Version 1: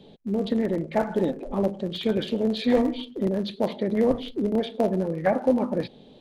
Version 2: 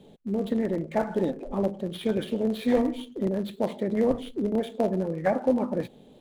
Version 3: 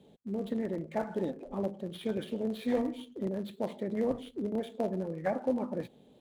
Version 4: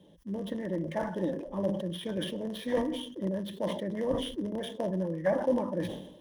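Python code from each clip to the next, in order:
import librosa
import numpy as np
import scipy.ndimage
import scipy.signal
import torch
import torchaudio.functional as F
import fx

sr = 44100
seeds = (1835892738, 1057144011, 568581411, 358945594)

y1 = scipy.ndimage.median_filter(x, 9, mode='constant')
y1 = y1 * librosa.db_to_amplitude(-2.0)
y2 = scipy.signal.sosfilt(scipy.signal.butter(2, 40.0, 'highpass', fs=sr, output='sos'), y1)
y2 = y2 * librosa.db_to_amplitude(-7.0)
y3 = fx.ripple_eq(y2, sr, per_octave=1.2, db=10)
y3 = fx.sustainer(y3, sr, db_per_s=66.0)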